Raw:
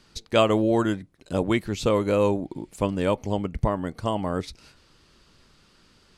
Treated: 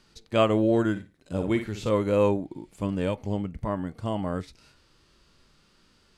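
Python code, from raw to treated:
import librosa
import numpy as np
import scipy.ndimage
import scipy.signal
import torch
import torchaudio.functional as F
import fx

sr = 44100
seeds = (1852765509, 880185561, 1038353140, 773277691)

y = fx.dynamic_eq(x, sr, hz=1700.0, q=1.1, threshold_db=-38.0, ratio=4.0, max_db=4)
y = fx.room_flutter(y, sr, wall_m=9.5, rt60_s=0.26, at=(0.95, 1.89), fade=0.02)
y = fx.hpss(y, sr, part='percussive', gain_db=-12)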